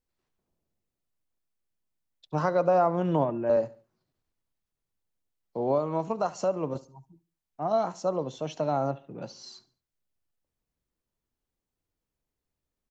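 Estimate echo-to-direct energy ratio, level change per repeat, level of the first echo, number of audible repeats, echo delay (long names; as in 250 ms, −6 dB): −19.0 dB, −9.5 dB, −19.5 dB, 2, 71 ms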